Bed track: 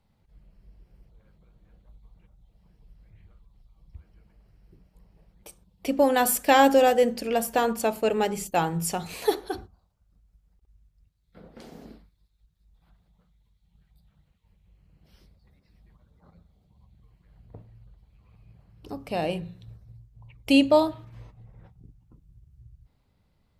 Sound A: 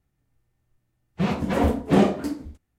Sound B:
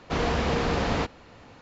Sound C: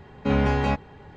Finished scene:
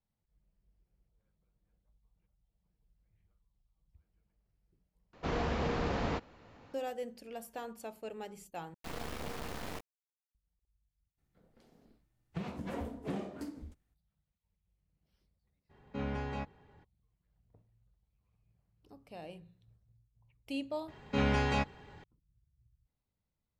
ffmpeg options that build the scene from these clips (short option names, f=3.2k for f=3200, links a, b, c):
-filter_complex "[2:a]asplit=2[a][b];[3:a]asplit=2[c][d];[0:a]volume=-19.5dB[e];[a]highshelf=f=2.9k:g=-6[f];[b]acrusher=bits=3:dc=4:mix=0:aa=0.000001[g];[1:a]acompressor=threshold=-37dB:ratio=3:attack=38:release=298:knee=1:detection=peak[h];[d]highshelf=f=2.1k:g=9.5[i];[e]asplit=3[j][k][l];[j]atrim=end=5.134[m];[f]atrim=end=1.61,asetpts=PTS-STARTPTS,volume=-7.5dB[n];[k]atrim=start=6.736:end=8.744[o];[g]atrim=end=1.61,asetpts=PTS-STARTPTS,volume=-12.5dB[p];[l]atrim=start=10.346[q];[h]atrim=end=2.78,asetpts=PTS-STARTPTS,volume=-6dB,afade=t=in:d=0.02,afade=t=out:st=2.76:d=0.02,adelay=11170[r];[c]atrim=end=1.16,asetpts=PTS-STARTPTS,volume=-15.5dB,afade=t=in:d=0.02,afade=t=out:st=1.14:d=0.02,adelay=15690[s];[i]atrim=end=1.16,asetpts=PTS-STARTPTS,volume=-8.5dB,afade=t=in:d=0.004:c=hsin,afade=t=out:st=1.156:d=0.004:c=hsin,adelay=20880[t];[m][n]acrossfade=d=0.004:c1=hsin:c2=hsin[u];[u][o]acrossfade=d=0.004:c1=hsin:c2=hsin[v];[v][p]acrossfade=d=0.004:c1=hsin:c2=hsin[w];[w][q]acrossfade=d=0.004:c1=hsin:c2=hsin[x];[x][r][s][t]amix=inputs=4:normalize=0"